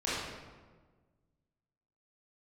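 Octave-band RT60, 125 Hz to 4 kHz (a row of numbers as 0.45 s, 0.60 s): 2.1 s, 1.8 s, 1.5 s, 1.3 s, 1.1 s, 0.85 s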